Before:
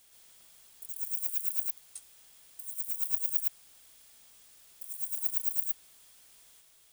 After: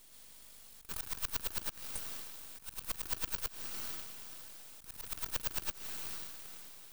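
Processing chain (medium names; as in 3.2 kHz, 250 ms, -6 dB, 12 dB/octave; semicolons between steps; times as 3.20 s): echo that smears into a reverb 495 ms, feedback 40%, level -13 dB; half-wave rectifier; slow attack 165 ms; trim +6 dB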